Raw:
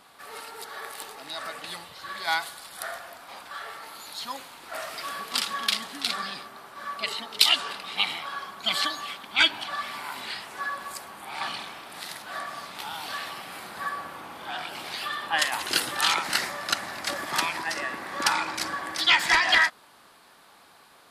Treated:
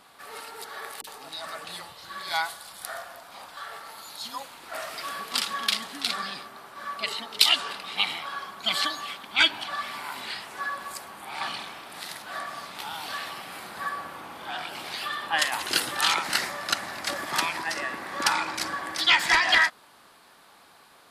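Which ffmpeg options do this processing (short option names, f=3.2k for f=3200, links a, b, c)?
-filter_complex "[0:a]asettb=1/sr,asplit=3[a][b][c];[a]atrim=end=1.014[d];[b]atrim=start=1.01:end=4.47,asetpts=PTS-STARTPTS,afade=t=in:d=0.004:c=qsin,afade=t=out:st=3.456:d=0.004:c=qsin,acrossover=split=340|2100[e][f][g];[g]adelay=30[h];[f]adelay=60[i];[e][i][h]amix=inputs=3:normalize=0,atrim=end_sample=152586[j];[c]atrim=start=4.466[k];[d][j]acrossfade=d=0.004:c1=hsin:c2=qsin[l];[l][k]acrossfade=d=0.004:c1=qsin:c2=hsin"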